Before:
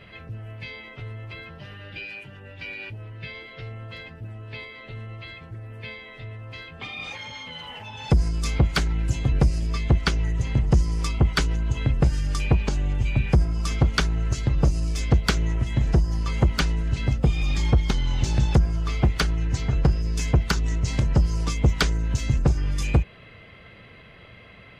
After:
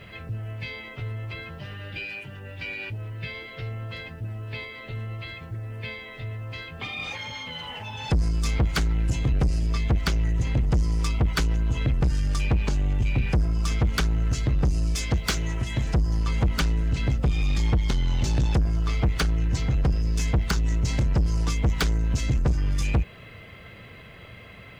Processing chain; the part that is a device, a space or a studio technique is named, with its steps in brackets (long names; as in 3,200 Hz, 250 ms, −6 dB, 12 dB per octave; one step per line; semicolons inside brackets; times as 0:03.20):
0:14.95–0:15.94: spectral tilt +1.5 dB per octave
open-reel tape (soft clipping −20.5 dBFS, distortion −10 dB; parametric band 94 Hz +2.5 dB 1.09 octaves; white noise bed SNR 47 dB)
level +2 dB